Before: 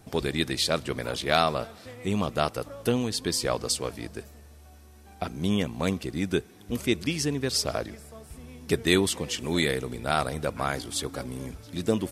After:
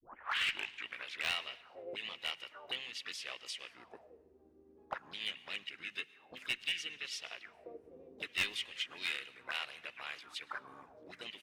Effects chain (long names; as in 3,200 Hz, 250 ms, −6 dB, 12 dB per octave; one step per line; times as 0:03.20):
turntable start at the beginning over 1.07 s
mains-hum notches 50/100/150/200/250 Hz
envelope filter 280–2,700 Hz, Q 7.5, up, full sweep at −26.5 dBFS
speed change +6%
in parallel at −11 dB: wave folding −34.5 dBFS
on the sum: pitch-shifted copies added −7 semitones −11 dB, −4 semitones −10 dB, +5 semitones −16 dB
asymmetric clip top −30 dBFS
on a send at −20.5 dB: convolution reverb RT60 1.1 s, pre-delay 100 ms
on the sum: level +1.5 dB